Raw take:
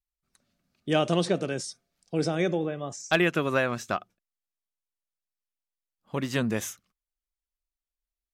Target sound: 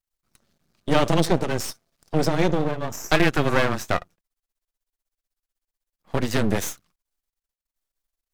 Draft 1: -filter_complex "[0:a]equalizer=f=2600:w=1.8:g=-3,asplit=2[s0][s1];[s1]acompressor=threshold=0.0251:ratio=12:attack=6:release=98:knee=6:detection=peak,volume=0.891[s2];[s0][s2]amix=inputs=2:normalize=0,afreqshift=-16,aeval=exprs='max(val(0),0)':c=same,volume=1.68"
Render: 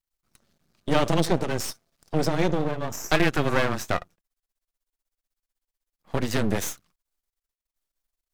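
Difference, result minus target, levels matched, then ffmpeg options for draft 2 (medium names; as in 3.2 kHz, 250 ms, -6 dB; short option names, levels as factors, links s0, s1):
compression: peak gain reduction +10 dB
-filter_complex "[0:a]equalizer=f=2600:w=1.8:g=-3,asplit=2[s0][s1];[s1]acompressor=threshold=0.0891:ratio=12:attack=6:release=98:knee=6:detection=peak,volume=0.891[s2];[s0][s2]amix=inputs=2:normalize=0,afreqshift=-16,aeval=exprs='max(val(0),0)':c=same,volume=1.68"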